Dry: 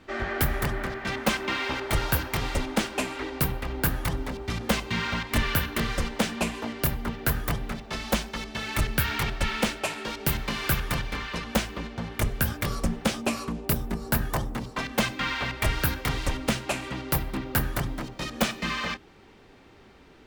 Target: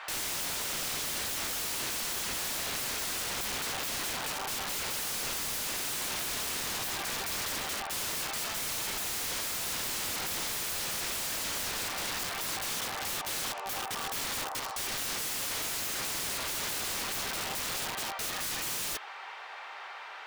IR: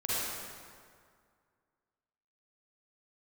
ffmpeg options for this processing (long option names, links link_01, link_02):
-filter_complex "[0:a]asplit=2[link_01][link_02];[link_02]highpass=frequency=720:poles=1,volume=26dB,asoftclip=type=tanh:threshold=-15dB[link_03];[link_01][link_03]amix=inputs=2:normalize=0,lowpass=frequency=1400:poles=1,volume=-6dB,highpass=frequency=760:width=0.5412,highpass=frequency=760:width=1.3066,aeval=exprs='(mod(29.9*val(0)+1,2)-1)/29.9':channel_layout=same"